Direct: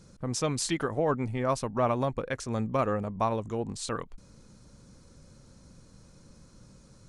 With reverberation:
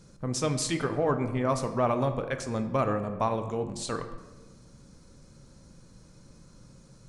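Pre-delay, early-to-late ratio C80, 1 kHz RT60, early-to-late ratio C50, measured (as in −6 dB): 3 ms, 11.5 dB, 1.1 s, 10.0 dB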